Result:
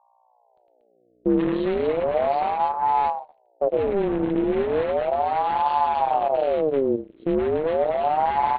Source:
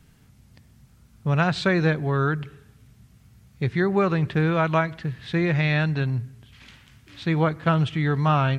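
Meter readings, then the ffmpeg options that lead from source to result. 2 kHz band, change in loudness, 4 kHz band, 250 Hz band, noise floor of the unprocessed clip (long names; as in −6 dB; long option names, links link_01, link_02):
−9.5 dB, +0.5 dB, −7.0 dB, −1.0 dB, −56 dBFS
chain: -af "acrusher=bits=6:mix=0:aa=0.000001,asoftclip=type=tanh:threshold=-18.5dB,afwtdn=0.0178,aecho=1:1:107|236|759:0.596|0.531|0.708,aeval=exprs='0.299*(cos(1*acos(clip(val(0)/0.299,-1,1)))-cos(1*PI/2))+0.075*(cos(6*acos(clip(val(0)/0.299,-1,1)))-cos(6*PI/2))':channel_layout=same,alimiter=limit=-19.5dB:level=0:latency=1:release=48,aeval=exprs='max(val(0),0)':channel_layout=same,flanger=delay=6.4:depth=5.5:regen=-75:speed=0.84:shape=triangular,aresample=8000,aresample=44100,lowshelf=frequency=150:gain=11.5,aeval=exprs='val(0)+0.000794*(sin(2*PI*60*n/s)+sin(2*PI*2*60*n/s)/2+sin(2*PI*3*60*n/s)/3+sin(2*PI*4*60*n/s)/4+sin(2*PI*5*60*n/s)/5)':channel_layout=same,aeval=exprs='val(0)*sin(2*PI*600*n/s+600*0.45/0.35*sin(2*PI*0.35*n/s))':channel_layout=same,volume=4dB"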